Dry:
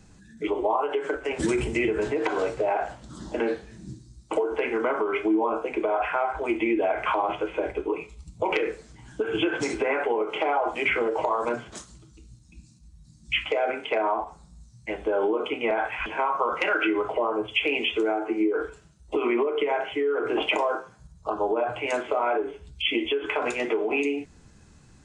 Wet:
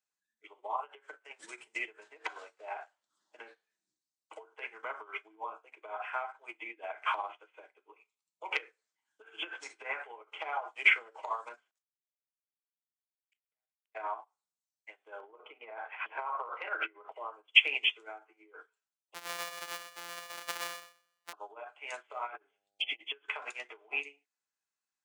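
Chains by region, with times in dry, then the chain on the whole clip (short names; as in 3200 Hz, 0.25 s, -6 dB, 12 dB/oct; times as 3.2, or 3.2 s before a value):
11.71–13.95 power-law curve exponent 2 + flipped gate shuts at -31 dBFS, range -33 dB
15.2–17.12 LPF 3000 Hz + bell 470 Hz +9.5 dB 2.4 oct + compressor 20:1, threshold -20 dBFS
19.14–21.33 sample sorter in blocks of 256 samples + feedback echo 0.126 s, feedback 47%, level -4 dB
22.26–23.03 bell 620 Hz -5.5 dB 1 oct + negative-ratio compressor -29 dBFS, ratio -0.5 + buzz 100 Hz, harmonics 8, -41 dBFS
whole clip: HPF 1000 Hz 12 dB/oct; upward expander 2.5:1, over -45 dBFS; gain +5.5 dB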